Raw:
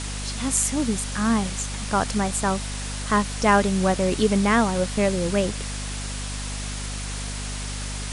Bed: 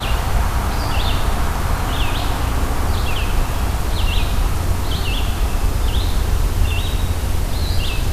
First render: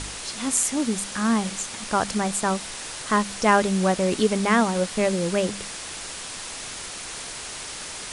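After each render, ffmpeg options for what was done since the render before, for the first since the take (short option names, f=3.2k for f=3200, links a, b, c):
-af "bandreject=f=50:t=h:w=4,bandreject=f=100:t=h:w=4,bandreject=f=150:t=h:w=4,bandreject=f=200:t=h:w=4,bandreject=f=250:t=h:w=4"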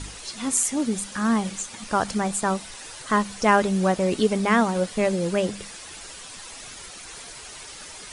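-af "afftdn=nr=9:nf=-36"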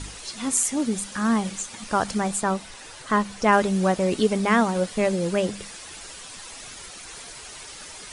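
-filter_complex "[0:a]asettb=1/sr,asplit=3[a][b][c];[a]atrim=end=2.424[d];[b]atrim=start=2.42:end=3.53,asetpts=PTS-STARTPTS,afade=t=in:d=0.004:c=qsin,afade=t=out:st=1.106:d=0.004:c=qsin,highshelf=f=4.8k:g=-6[e];[c]atrim=start=3.526[f];[d][e]acrossfade=d=0.004:c1=hsin:c2=qsin[g];[g][f]acrossfade=d=0.004:c1=qsin:c2=hsin"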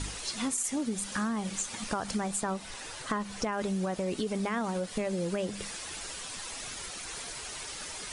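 -af "alimiter=limit=-15dB:level=0:latency=1:release=13,acompressor=threshold=-28dB:ratio=10"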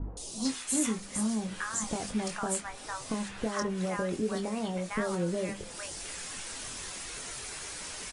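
-filter_complex "[0:a]asplit=2[a][b];[b]adelay=23,volume=-7dB[c];[a][c]amix=inputs=2:normalize=0,acrossover=split=850|3600[d][e][f];[f]adelay=170[g];[e]adelay=450[h];[d][h][g]amix=inputs=3:normalize=0"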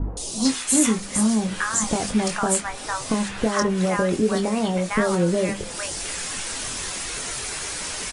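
-af "volume=10.5dB"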